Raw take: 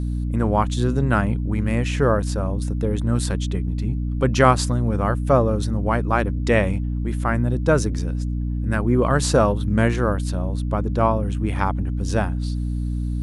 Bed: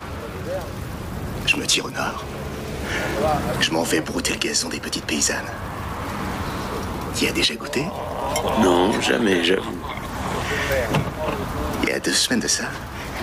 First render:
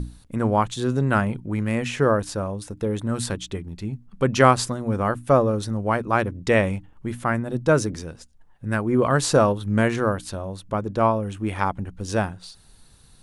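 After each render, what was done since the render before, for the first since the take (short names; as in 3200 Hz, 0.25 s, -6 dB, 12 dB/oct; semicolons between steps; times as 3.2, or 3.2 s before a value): notches 60/120/180/240/300 Hz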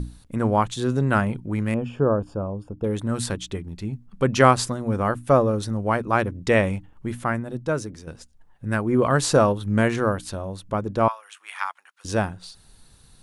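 1.74–2.84 running mean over 22 samples; 7.18–8.07 fade out quadratic, to -8.5 dB; 11.08–12.05 HPF 1100 Hz 24 dB/oct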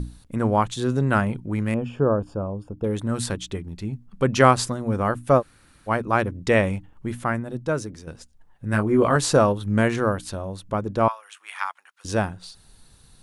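5.4–5.89 room tone, crossfade 0.06 s; 8.71–9.16 doubler 19 ms -4.5 dB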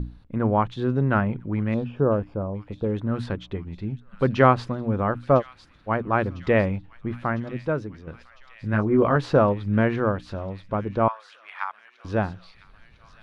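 air absorption 330 m; thin delay 1.003 s, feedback 71%, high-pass 3200 Hz, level -10.5 dB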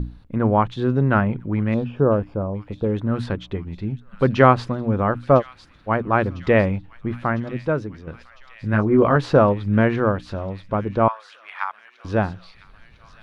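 gain +3.5 dB; limiter -1 dBFS, peak gain reduction 1 dB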